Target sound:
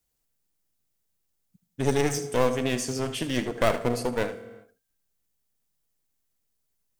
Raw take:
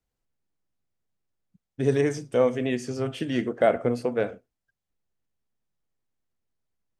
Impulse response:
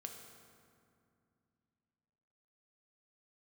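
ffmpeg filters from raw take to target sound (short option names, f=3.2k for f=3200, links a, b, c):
-filter_complex "[0:a]aeval=exprs='clip(val(0),-1,0.0282)':c=same,crystalizer=i=3:c=0,asplit=2[a][b];[1:a]atrim=start_sample=2205,afade=t=out:st=0.38:d=0.01,atrim=end_sample=17199,adelay=77[c];[b][c]afir=irnorm=-1:irlink=0,volume=-8dB[d];[a][d]amix=inputs=2:normalize=0"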